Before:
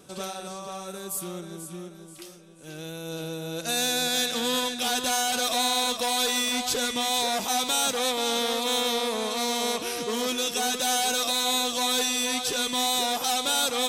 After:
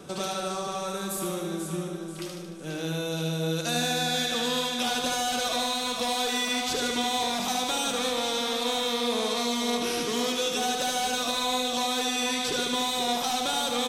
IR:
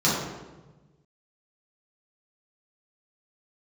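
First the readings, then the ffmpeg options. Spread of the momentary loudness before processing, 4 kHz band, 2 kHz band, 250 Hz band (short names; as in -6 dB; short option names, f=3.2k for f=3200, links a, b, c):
14 LU, -2.0 dB, -1.0 dB, +2.0 dB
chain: -filter_complex "[0:a]highshelf=f=5.7k:g=-10.5,acrossover=split=200|2800[a][b][c];[a]acompressor=threshold=-52dB:ratio=4[d];[b]acompressor=threshold=-39dB:ratio=4[e];[c]acompressor=threshold=-40dB:ratio=4[f];[d][e][f]amix=inputs=3:normalize=0,aecho=1:1:75|150|225|300|375|450|525|600:0.562|0.332|0.196|0.115|0.0681|0.0402|0.0237|0.014,asplit=2[g][h];[1:a]atrim=start_sample=2205[i];[h][i]afir=irnorm=-1:irlink=0,volume=-30dB[j];[g][j]amix=inputs=2:normalize=0,volume=7.5dB"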